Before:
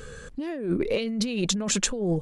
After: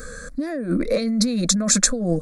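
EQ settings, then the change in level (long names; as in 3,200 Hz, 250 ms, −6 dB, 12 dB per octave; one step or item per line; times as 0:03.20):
parametric band 4,200 Hz +5 dB 0.4 octaves
high-shelf EQ 7,000 Hz +5.5 dB
phaser with its sweep stopped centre 590 Hz, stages 8
+8.0 dB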